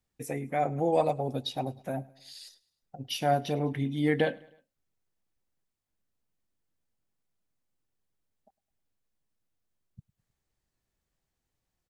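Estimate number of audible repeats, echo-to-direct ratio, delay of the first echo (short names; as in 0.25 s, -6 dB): 2, -22.5 dB, 0.104 s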